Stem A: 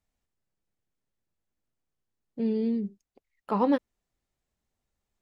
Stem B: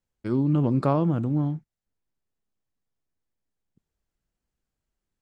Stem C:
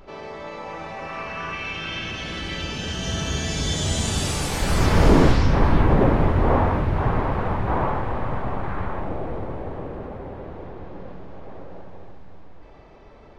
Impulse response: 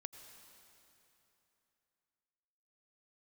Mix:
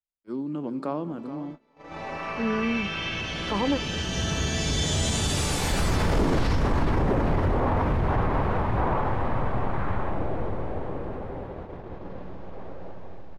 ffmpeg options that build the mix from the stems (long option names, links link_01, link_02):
-filter_complex "[0:a]volume=0dB[link_01];[1:a]highpass=frequency=200:width=0.5412,highpass=frequency=200:width=1.3066,volume=-9dB,asplit=4[link_02][link_03][link_04][link_05];[link_03]volume=-3.5dB[link_06];[link_04]volume=-10dB[link_07];[2:a]adelay=1100,volume=-1dB,asplit=2[link_08][link_09];[link_09]volume=-13dB[link_10];[link_05]apad=whole_len=638753[link_11];[link_08][link_11]sidechaincompress=threshold=-50dB:ratio=8:attack=6.1:release=455[link_12];[3:a]atrim=start_sample=2205[link_13];[link_06][link_13]afir=irnorm=-1:irlink=0[link_14];[link_07][link_10]amix=inputs=2:normalize=0,aecho=0:1:425|850|1275|1700|2125|2550:1|0.45|0.202|0.0911|0.041|0.0185[link_15];[link_01][link_02][link_12][link_14][link_15]amix=inputs=5:normalize=0,agate=range=-23dB:threshold=-36dB:ratio=16:detection=peak,alimiter=limit=-15.5dB:level=0:latency=1:release=23"